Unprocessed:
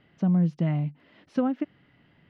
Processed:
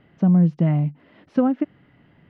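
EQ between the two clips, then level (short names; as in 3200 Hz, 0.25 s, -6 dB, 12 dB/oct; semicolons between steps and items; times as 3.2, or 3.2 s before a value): high shelf 2800 Hz -12 dB; +6.5 dB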